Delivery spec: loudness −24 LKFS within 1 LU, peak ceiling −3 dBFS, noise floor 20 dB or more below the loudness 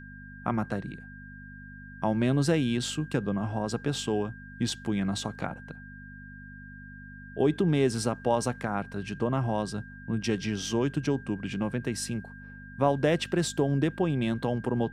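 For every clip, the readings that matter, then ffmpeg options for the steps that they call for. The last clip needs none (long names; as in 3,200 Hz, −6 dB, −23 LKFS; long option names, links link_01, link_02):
mains hum 50 Hz; hum harmonics up to 250 Hz; level of the hum −44 dBFS; interfering tone 1,600 Hz; level of the tone −47 dBFS; integrated loudness −29.5 LKFS; sample peak −10.0 dBFS; target loudness −24.0 LKFS
→ -af "bandreject=frequency=50:width_type=h:width=4,bandreject=frequency=100:width_type=h:width=4,bandreject=frequency=150:width_type=h:width=4,bandreject=frequency=200:width_type=h:width=4,bandreject=frequency=250:width_type=h:width=4"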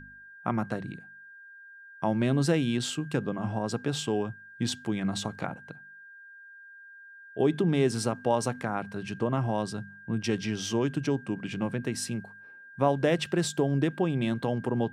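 mains hum none found; interfering tone 1,600 Hz; level of the tone −47 dBFS
→ -af "bandreject=frequency=1600:width=30"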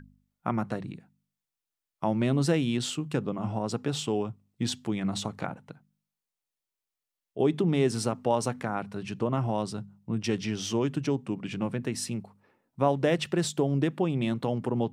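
interfering tone none found; integrated loudness −29.5 LKFS; sample peak −10.0 dBFS; target loudness −24.0 LKFS
→ -af "volume=5.5dB"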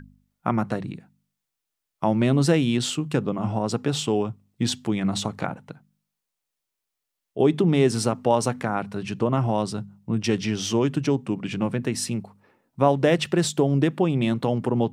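integrated loudness −24.0 LKFS; sample peak −4.5 dBFS; background noise floor −83 dBFS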